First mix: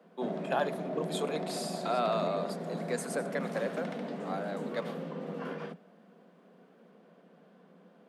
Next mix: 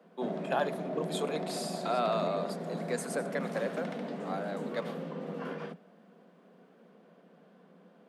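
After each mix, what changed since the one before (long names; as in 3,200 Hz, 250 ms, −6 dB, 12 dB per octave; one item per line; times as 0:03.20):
nothing changed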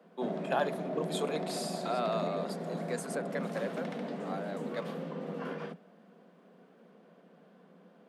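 second voice: send off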